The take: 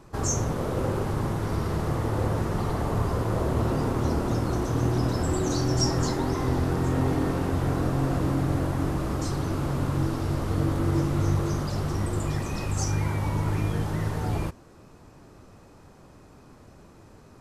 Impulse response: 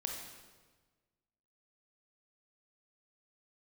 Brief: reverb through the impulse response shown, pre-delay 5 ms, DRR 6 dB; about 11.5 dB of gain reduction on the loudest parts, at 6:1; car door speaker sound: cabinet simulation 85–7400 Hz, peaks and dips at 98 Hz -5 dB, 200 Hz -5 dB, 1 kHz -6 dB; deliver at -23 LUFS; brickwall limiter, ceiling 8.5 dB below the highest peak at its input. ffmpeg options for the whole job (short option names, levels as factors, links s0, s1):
-filter_complex "[0:a]acompressor=threshold=0.0224:ratio=6,alimiter=level_in=2.51:limit=0.0631:level=0:latency=1,volume=0.398,asplit=2[s0][s1];[1:a]atrim=start_sample=2205,adelay=5[s2];[s1][s2]afir=irnorm=-1:irlink=0,volume=0.473[s3];[s0][s3]amix=inputs=2:normalize=0,highpass=85,equalizer=f=98:t=q:w=4:g=-5,equalizer=f=200:t=q:w=4:g=-5,equalizer=f=1000:t=q:w=4:g=-6,lowpass=f=7400:w=0.5412,lowpass=f=7400:w=1.3066,volume=10.6"